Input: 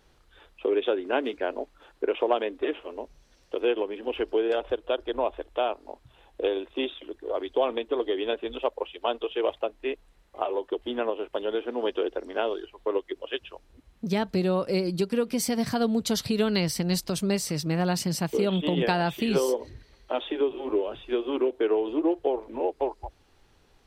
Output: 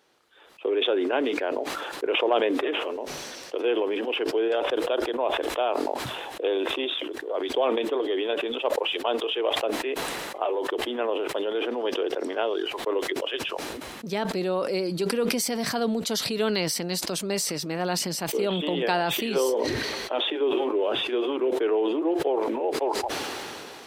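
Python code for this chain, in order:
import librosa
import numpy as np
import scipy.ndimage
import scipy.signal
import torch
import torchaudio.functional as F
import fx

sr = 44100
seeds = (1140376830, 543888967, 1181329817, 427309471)

y = scipy.signal.sosfilt(scipy.signal.butter(2, 290.0, 'highpass', fs=sr, output='sos'), x)
y = fx.sustainer(y, sr, db_per_s=21.0)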